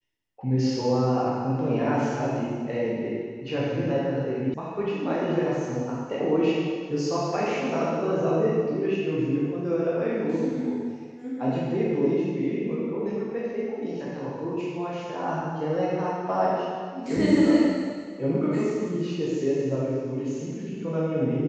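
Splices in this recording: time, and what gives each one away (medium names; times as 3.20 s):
4.54 s: sound stops dead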